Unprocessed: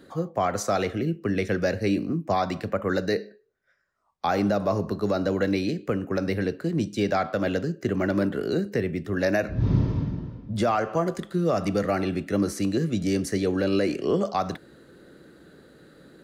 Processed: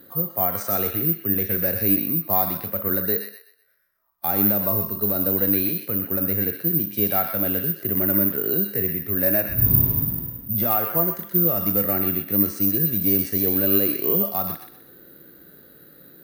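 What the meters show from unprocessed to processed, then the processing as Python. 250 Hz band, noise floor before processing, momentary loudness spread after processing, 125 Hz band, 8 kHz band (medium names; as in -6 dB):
-0.5 dB, -62 dBFS, 6 LU, 0.0 dB, +1.0 dB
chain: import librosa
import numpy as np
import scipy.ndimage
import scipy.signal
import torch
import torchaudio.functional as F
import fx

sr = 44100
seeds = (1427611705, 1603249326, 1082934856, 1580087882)

y = fx.echo_wet_highpass(x, sr, ms=125, feedback_pct=32, hz=1500.0, wet_db=-4.0)
y = (np.kron(scipy.signal.resample_poly(y, 1, 3), np.eye(3)[0]) * 3)[:len(y)]
y = fx.hpss(y, sr, part='percussive', gain_db=-10)
y = F.gain(torch.from_numpy(y), 1.0).numpy()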